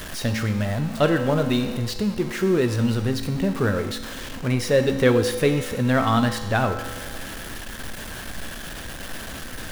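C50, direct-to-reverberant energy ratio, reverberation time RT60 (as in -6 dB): 8.5 dB, 6.5 dB, 1.4 s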